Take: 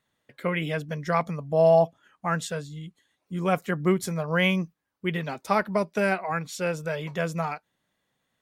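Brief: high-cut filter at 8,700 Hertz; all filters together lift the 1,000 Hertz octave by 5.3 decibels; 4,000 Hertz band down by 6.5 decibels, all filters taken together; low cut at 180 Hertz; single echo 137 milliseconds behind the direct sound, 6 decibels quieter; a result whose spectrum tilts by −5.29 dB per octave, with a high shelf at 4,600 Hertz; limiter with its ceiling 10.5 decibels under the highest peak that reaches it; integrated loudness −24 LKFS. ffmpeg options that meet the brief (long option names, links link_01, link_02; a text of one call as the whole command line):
ffmpeg -i in.wav -af "highpass=180,lowpass=8700,equalizer=frequency=1000:width_type=o:gain=8,equalizer=frequency=4000:width_type=o:gain=-7.5,highshelf=frequency=4600:gain=-5.5,alimiter=limit=-15.5dB:level=0:latency=1,aecho=1:1:137:0.501,volume=4dB" out.wav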